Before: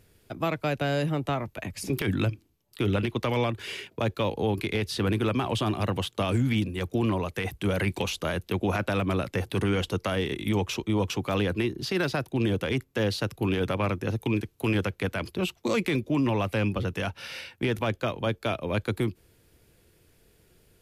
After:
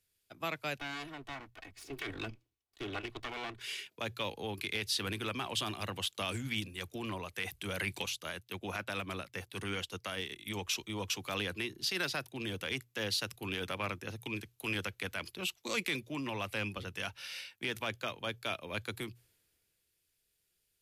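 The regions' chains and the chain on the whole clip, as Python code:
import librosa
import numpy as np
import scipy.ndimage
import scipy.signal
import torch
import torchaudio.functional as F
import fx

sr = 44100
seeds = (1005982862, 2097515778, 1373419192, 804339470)

y = fx.chain(x, sr, fx.lower_of_two(delay_ms=2.7),
    fx.lowpass(hz=2700.0, slope=6), at=(0.78, 3.61))
y = fx.chain(y, sr, fx.highpass(hz=40.0, slope=12),
    fx.upward_expand(threshold_db=-44.0, expansion=1.5), at=(8.06, 10.65))
y = fx.tilt_shelf(y, sr, db=-7.5, hz=1200.0)
y = fx.hum_notches(y, sr, base_hz=60, count=2)
y = fx.band_widen(y, sr, depth_pct=40)
y = F.gain(torch.from_numpy(y), -7.5).numpy()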